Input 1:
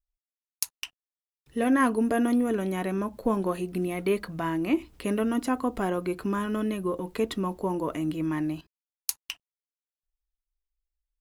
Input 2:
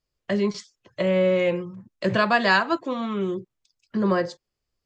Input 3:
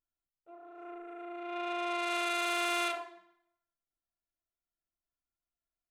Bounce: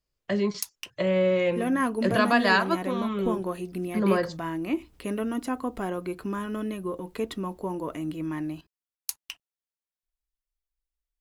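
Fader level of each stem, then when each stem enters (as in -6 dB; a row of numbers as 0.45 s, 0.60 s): -3.0 dB, -2.5 dB, mute; 0.00 s, 0.00 s, mute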